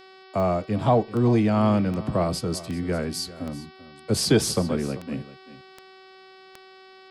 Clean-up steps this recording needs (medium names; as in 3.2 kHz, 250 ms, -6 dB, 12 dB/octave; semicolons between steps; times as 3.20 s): de-click; de-hum 379.1 Hz, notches 14; inverse comb 390 ms -17 dB